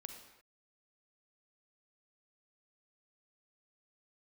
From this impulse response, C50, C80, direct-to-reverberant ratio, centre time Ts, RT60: 5.0 dB, 7.5 dB, 4.5 dB, 30 ms, no single decay rate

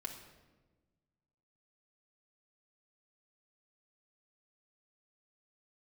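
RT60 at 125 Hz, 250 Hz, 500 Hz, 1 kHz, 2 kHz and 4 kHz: 2.0 s, 1.8 s, 1.4 s, 1.1 s, 1.0 s, 0.85 s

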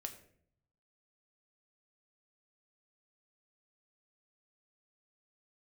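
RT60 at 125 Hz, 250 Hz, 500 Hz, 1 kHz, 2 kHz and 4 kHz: 1.2 s, 0.85 s, 0.70 s, 0.50 s, 0.55 s, 0.40 s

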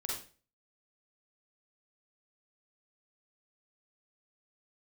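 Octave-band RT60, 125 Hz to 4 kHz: 0.45 s, 0.40 s, 0.40 s, 0.35 s, 0.35 s, 0.35 s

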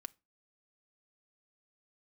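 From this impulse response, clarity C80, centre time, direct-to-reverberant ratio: 33.5 dB, 1 ms, 9.0 dB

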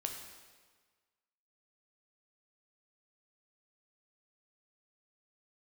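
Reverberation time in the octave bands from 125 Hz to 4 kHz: 1.4 s, 1.4 s, 1.5 s, 1.5 s, 1.4 s, 1.3 s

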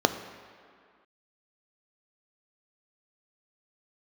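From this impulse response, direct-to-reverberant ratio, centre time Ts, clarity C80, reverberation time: 8.5 dB, 17 ms, 12.0 dB, no single decay rate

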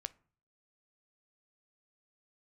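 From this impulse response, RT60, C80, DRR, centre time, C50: 0.45 s, 28.0 dB, 14.5 dB, 2 ms, 22.0 dB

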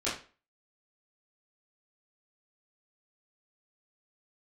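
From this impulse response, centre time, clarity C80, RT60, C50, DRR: 35 ms, 11.5 dB, 0.35 s, 6.0 dB, -11.0 dB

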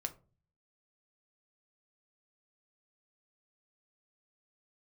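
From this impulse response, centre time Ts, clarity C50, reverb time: 6 ms, 17.0 dB, 0.35 s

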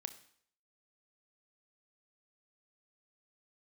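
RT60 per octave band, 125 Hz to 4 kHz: 0.55 s, 0.55 s, 0.60 s, 0.60 s, 0.60 s, 0.60 s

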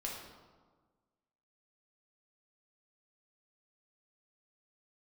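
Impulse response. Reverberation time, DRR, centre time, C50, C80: 1.5 s, -3.5 dB, 61 ms, 2.0 dB, 4.5 dB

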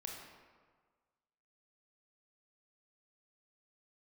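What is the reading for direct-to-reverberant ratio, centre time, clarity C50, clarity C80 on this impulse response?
-0.5 dB, 68 ms, 2.0 dB, 4.0 dB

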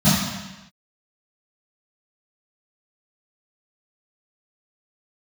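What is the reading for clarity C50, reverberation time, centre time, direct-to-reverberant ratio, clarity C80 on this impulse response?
-0.5 dB, no single decay rate, 84 ms, -15.0 dB, 2.5 dB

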